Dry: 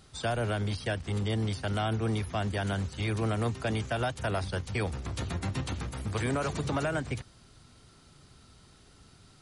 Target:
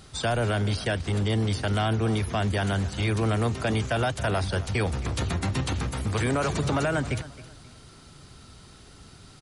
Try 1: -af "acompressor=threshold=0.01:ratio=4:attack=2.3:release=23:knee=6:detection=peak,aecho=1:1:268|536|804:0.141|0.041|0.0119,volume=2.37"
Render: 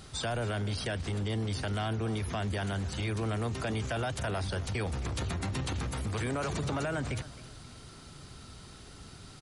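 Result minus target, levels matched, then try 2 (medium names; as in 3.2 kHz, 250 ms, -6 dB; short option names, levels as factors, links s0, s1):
compression: peak gain reduction +8 dB
-af "acompressor=threshold=0.0355:ratio=4:attack=2.3:release=23:knee=6:detection=peak,aecho=1:1:268|536|804:0.141|0.041|0.0119,volume=2.37"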